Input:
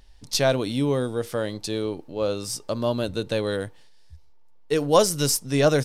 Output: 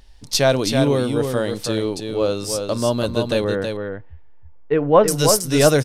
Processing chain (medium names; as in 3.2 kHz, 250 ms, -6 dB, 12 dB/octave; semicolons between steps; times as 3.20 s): 3.44–5.08 s: low-pass 2.2 kHz 24 dB/octave; delay 324 ms -5.5 dB; trim +4.5 dB